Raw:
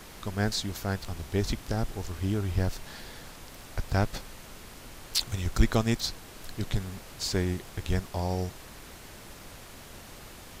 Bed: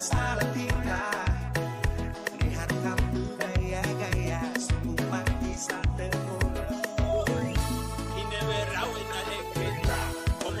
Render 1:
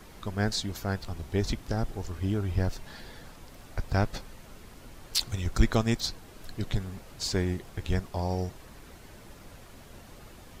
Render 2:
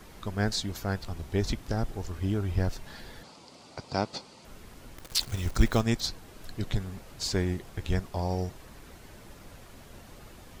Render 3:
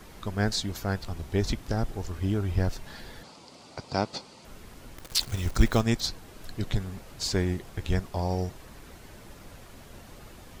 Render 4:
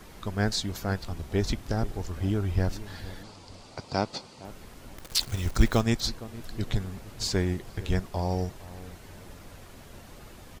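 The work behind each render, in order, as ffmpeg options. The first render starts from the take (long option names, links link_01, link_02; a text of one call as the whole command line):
ffmpeg -i in.wav -af "afftdn=noise_reduction=7:noise_floor=-47" out.wav
ffmpeg -i in.wav -filter_complex "[0:a]asettb=1/sr,asplit=3[link_01][link_02][link_03];[link_01]atrim=end=3.234[link_04];[link_02]atrim=start=3.23:end=4.45,asetpts=PTS-STARTPTS,afade=type=in:duration=0.004:curve=qsin,afade=type=out:start_time=1.216:duration=0.004:curve=qsin,highpass=180,equalizer=frequency=900:width_type=q:width=4:gain=3,equalizer=frequency=1700:width_type=q:width=4:gain=-10,equalizer=frequency=4600:width_type=q:width=4:gain=8,lowpass=frequency=8800:width=0.5412,lowpass=frequency=8800:width=1.3066[link_05];[link_03]atrim=start=4.446[link_06];[link_04][link_05]acrossfade=duration=0.004:curve1=hsin:curve2=qsin[link_07];[link_07][link_06]acrossfade=duration=0.004:curve1=qsin:curve2=hsin,asettb=1/sr,asplit=3[link_08][link_09][link_10];[link_08]atrim=end=4.974[link_11];[link_09]atrim=start=4.97:end=5.81,asetpts=PTS-STARTPTS,afade=type=in:duration=0.004:curve=qsin,afade=type=out:start_time=0.836:duration=0.004:curve=qsin,acrusher=bits=8:dc=4:mix=0:aa=0.000001[link_12];[link_10]atrim=start=5.806[link_13];[link_11][link_12]acrossfade=duration=0.004:curve1=hsin:curve2=qsin[link_14];[link_14][link_13]acrossfade=duration=0.004:curve1=qsin:curve2=hsin" out.wav
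ffmpeg -i in.wav -af "volume=1.5dB" out.wav
ffmpeg -i in.wav -filter_complex "[0:a]asplit=2[link_01][link_02];[link_02]adelay=463,lowpass=frequency=950:poles=1,volume=-16dB,asplit=2[link_03][link_04];[link_04]adelay=463,lowpass=frequency=950:poles=1,volume=0.37,asplit=2[link_05][link_06];[link_06]adelay=463,lowpass=frequency=950:poles=1,volume=0.37[link_07];[link_01][link_03][link_05][link_07]amix=inputs=4:normalize=0" out.wav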